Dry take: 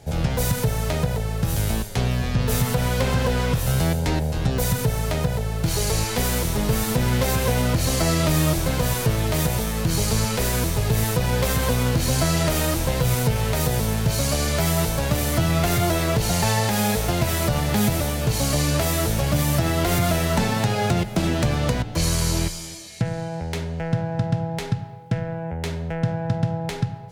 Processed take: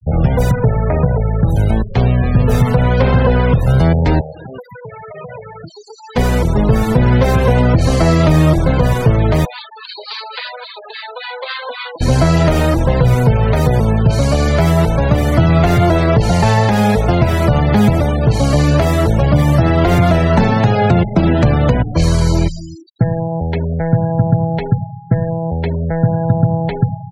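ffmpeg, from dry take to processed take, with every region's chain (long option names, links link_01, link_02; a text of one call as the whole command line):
ffmpeg -i in.wav -filter_complex "[0:a]asettb=1/sr,asplit=3[link_01][link_02][link_03];[link_01]atrim=end=0.514[link_04];[link_02]atrim=start=0.51:end=1.2,asetpts=PTS-STARTPTS,afade=type=in:duration=0.004:curve=qsin,afade=type=out:start_time=0.686:duration=0.004:curve=qsin,lowpass=2400,bandreject=frequency=50:width_type=h:width=6,bandreject=frequency=100:width_type=h:width=6,bandreject=frequency=150:width_type=h:width=6,bandreject=frequency=200:width_type=h:width=6,bandreject=frequency=250:width_type=h:width=6,bandreject=frequency=300:width_type=h:width=6,bandreject=frequency=350:width_type=h:width=6[link_05];[link_03]atrim=start=1.196[link_06];[link_04][link_05]acrossfade=duration=0.004:curve1=hsin:curve2=qsin[link_07];[link_07][link_06]acrossfade=duration=0.004:curve1=qsin:curve2=hsin,asettb=1/sr,asplit=3[link_08][link_09][link_10];[link_08]atrim=end=4.214[link_11];[link_09]atrim=start=4.21:end=6.16,asetpts=PTS-STARTPTS,afade=type=in:duration=0.004:curve=qsin,afade=type=out:start_time=1.946:duration=0.004:curve=qsin,highpass=frequency=1000:poles=1,acompressor=threshold=-31dB:ratio=12:attack=3.2:release=140:knee=1:detection=peak[link_12];[link_10]atrim=start=6.156[link_13];[link_11][link_12]acrossfade=duration=0.004:curve1=hsin:curve2=qsin[link_14];[link_14][link_13]acrossfade=duration=0.004:curve1=qsin:curve2=hsin,asettb=1/sr,asplit=3[link_15][link_16][link_17];[link_15]atrim=end=9.454[link_18];[link_16]atrim=start=9.45:end=12.01,asetpts=PTS-STARTPTS,afade=type=in:duration=0.004:curve=qsin,afade=type=out:start_time=2.556:duration=0.004:curve=qsin,highpass=890,highshelf=frequency=5400:width_type=q:width=3:gain=-9,acrossover=split=970[link_19][link_20];[link_19]aeval=exprs='val(0)*(1-0.7/2+0.7/2*cos(2*PI*3.6*n/s))':channel_layout=same[link_21];[link_20]aeval=exprs='val(0)*(1-0.7/2-0.7/2*cos(2*PI*3.6*n/s))':channel_layout=same[link_22];[link_21][link_22]amix=inputs=2:normalize=0[link_23];[link_17]atrim=start=12.006[link_24];[link_18][link_23]acrossfade=duration=0.004:curve1=hsin:curve2=qsin[link_25];[link_25][link_24]acrossfade=duration=0.004:curve1=qsin:curve2=hsin,afftfilt=real='re*gte(hypot(re,im),0.0398)':imag='im*gte(hypot(re,im),0.0398)':win_size=1024:overlap=0.75,lowpass=frequency=1800:poles=1,acontrast=84,volume=3.5dB" out.wav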